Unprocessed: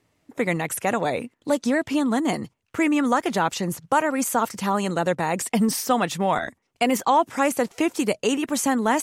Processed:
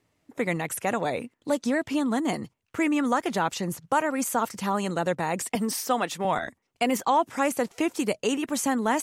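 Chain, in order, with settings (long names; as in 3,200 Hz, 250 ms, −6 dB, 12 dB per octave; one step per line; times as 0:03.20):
0:05.55–0:06.25: high-pass filter 250 Hz 12 dB per octave
level −3.5 dB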